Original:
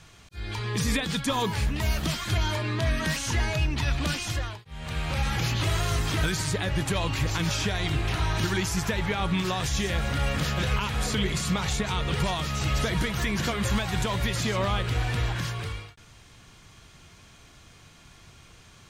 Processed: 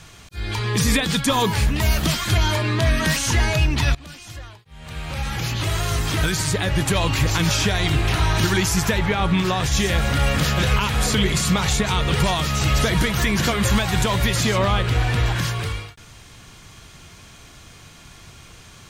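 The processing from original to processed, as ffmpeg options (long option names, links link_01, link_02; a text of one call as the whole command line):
ffmpeg -i in.wav -filter_complex "[0:a]asettb=1/sr,asplit=3[link_01][link_02][link_03];[link_01]atrim=end=8.984[link_04];[link_02]atrim=start=8.98:end=9.72,asetpts=PTS-STARTPTS,afade=type=in:duration=0.004:curve=qsin,afade=type=out:start_time=0.736:duration=0.004:curve=qsin,highshelf=frequency=4400:gain=-7[link_05];[link_03]atrim=start=9.716[link_06];[link_04][link_05]acrossfade=duration=0.004:curve1=hsin:curve2=qsin[link_07];[link_07][link_06]acrossfade=duration=0.004:curve1=qsin:curve2=hsin,asettb=1/sr,asplit=3[link_08][link_09][link_10];[link_08]atrim=end=14.584[link_11];[link_09]atrim=start=14.58:end=15.26,asetpts=PTS-STARTPTS,afade=type=in:duration=0.004:curve=qsin,afade=type=out:start_time=0.676:duration=0.004:curve=qsin,highshelf=frequency=5600:gain=-5.5[link_12];[link_10]atrim=start=15.256[link_13];[link_11][link_12]acrossfade=duration=0.004:curve1=hsin:curve2=qsin[link_14];[link_14][link_13]acrossfade=duration=0.004:curve1=qsin:curve2=hsin,asplit=2[link_15][link_16];[link_15]atrim=end=3.95,asetpts=PTS-STARTPTS,afade=type=out:start_time=3.946:duration=0.004:curve=hsin:silence=0.0749894[link_17];[link_16]atrim=start=3.95,asetpts=PTS-STARTPTS,afade=type=in:duration=3.13:silence=0.0749894[link_18];[link_17][link_18]concat=n=2:v=0:a=1,highshelf=frequency=9500:gain=5.5,acontrast=89" out.wav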